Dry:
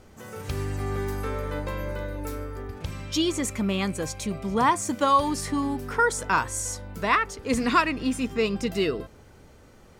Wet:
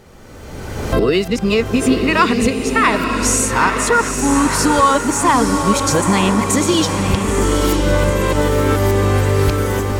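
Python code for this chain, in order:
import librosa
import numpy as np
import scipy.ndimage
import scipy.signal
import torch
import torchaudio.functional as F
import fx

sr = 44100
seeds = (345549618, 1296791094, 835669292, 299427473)

p1 = np.flip(x).copy()
p2 = fx.recorder_agc(p1, sr, target_db=-13.5, rise_db_per_s=26.0, max_gain_db=30)
p3 = fx.dmg_crackle(p2, sr, seeds[0], per_s=170.0, level_db=-51.0)
p4 = p3 + fx.echo_diffused(p3, sr, ms=911, feedback_pct=53, wet_db=-5.0, dry=0)
y = F.gain(torch.from_numpy(p4), 6.5).numpy()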